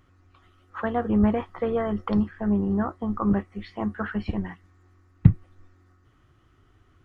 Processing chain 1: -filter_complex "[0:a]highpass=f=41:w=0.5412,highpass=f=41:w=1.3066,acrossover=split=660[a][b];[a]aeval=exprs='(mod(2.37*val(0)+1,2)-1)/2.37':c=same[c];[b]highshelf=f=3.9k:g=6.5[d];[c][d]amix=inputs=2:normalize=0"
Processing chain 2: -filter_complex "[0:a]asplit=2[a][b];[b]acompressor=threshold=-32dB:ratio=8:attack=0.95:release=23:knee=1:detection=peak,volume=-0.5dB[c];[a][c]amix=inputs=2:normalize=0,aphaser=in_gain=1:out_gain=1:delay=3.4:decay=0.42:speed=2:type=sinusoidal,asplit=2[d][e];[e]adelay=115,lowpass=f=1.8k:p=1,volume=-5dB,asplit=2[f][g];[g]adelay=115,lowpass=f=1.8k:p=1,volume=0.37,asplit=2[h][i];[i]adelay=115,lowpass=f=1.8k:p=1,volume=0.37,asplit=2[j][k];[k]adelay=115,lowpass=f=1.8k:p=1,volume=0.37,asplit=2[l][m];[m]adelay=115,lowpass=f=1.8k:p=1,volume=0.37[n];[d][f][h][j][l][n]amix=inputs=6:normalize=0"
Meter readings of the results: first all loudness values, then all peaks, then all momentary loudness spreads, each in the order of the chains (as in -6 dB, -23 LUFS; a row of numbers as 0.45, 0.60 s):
-26.5, -23.0 LUFS; -7.5, -2.5 dBFS; 10, 11 LU